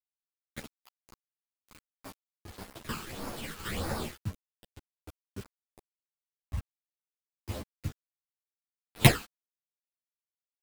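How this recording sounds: aliases and images of a low sample rate 5.9 kHz, jitter 0%; phasing stages 12, 1.6 Hz, lowest notch 600–3100 Hz; a quantiser's noise floor 8-bit, dither none; a shimmering, thickened sound

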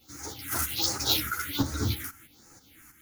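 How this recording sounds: phasing stages 4, 1.3 Hz, lowest notch 590–3300 Hz; tremolo saw up 3.1 Hz, depth 65%; a shimmering, thickened sound

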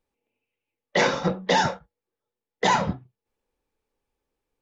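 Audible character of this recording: noise floor -89 dBFS; spectral tilt -4.0 dB/octave

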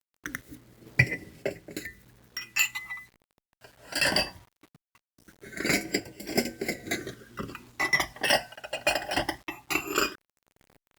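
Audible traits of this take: phasing stages 12, 0.2 Hz, lowest notch 370–1200 Hz; a quantiser's noise floor 10-bit, dither none; random-step tremolo; Opus

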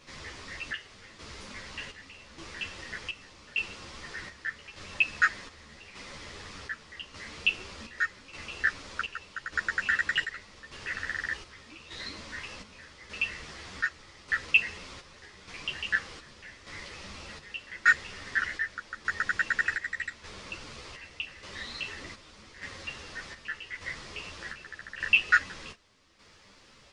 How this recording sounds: chopped level 0.84 Hz, depth 60%, duty 60%; a shimmering, thickened sound

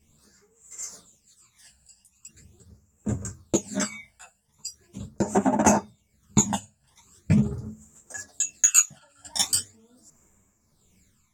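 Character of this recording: phasing stages 12, 0.41 Hz, lowest notch 360–4300 Hz; tremolo triangle 1.3 Hz, depth 65%; a shimmering, thickened sound

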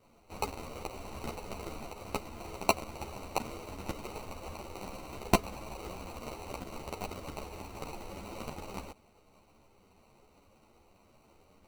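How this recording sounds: aliases and images of a low sample rate 1.7 kHz, jitter 0%; a shimmering, thickened sound

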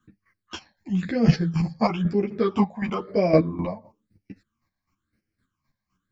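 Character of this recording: phasing stages 8, 1 Hz, lowest notch 380–1100 Hz; chopped level 3.9 Hz, depth 65%, duty 25%; a shimmering, thickened sound

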